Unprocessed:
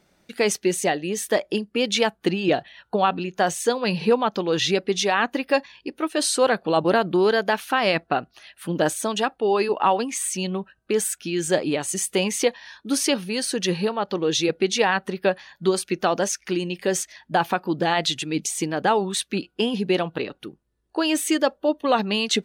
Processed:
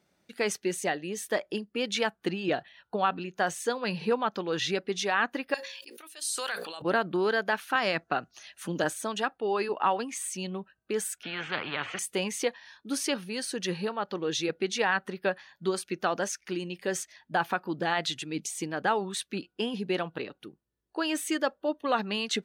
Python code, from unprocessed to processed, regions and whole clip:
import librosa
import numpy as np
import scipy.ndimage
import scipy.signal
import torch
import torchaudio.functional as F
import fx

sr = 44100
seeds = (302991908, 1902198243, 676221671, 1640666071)

y = fx.chain(x, sr, fx.differentiator(),
    fx.hum_notches(base_hz=60, count=9),
    fx.sustainer(db_per_s=21.0), at=(5.54, 6.82))
y = fx.chain(y, sr, fx.peak_eq(hz=6400.0, db=13.5, octaves=0.49),
    fx.band_squash(depth_pct=40), at=(7.75, 8.84))
y = fx.chain(y, sr, fx.cheby1_bandpass(low_hz=100.0, high_hz=2800.0, order=4),
    fx.spectral_comp(ratio=4.0), at=(11.23, 11.99))
y = scipy.signal.sosfilt(scipy.signal.butter(2, 69.0, 'highpass', fs=sr, output='sos'), y)
y = fx.dynamic_eq(y, sr, hz=1500.0, q=1.5, threshold_db=-37.0, ratio=4.0, max_db=6)
y = y * 10.0 ** (-8.5 / 20.0)